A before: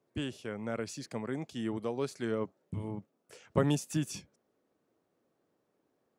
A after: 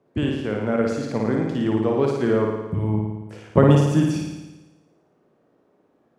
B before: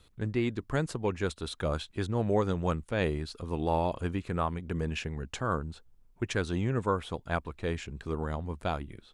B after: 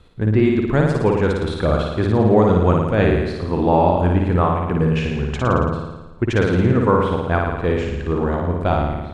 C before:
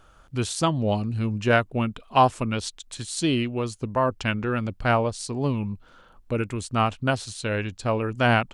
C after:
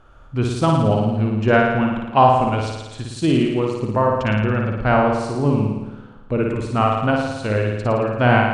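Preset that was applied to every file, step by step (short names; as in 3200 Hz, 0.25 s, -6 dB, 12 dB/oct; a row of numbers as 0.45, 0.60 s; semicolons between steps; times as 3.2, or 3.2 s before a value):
LPF 1500 Hz 6 dB/oct; on a send: flutter echo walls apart 9.6 m, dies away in 1.1 s; on the sum: normalise peaks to -1.5 dBFS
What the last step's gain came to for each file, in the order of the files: +12.0, +12.0, +4.5 dB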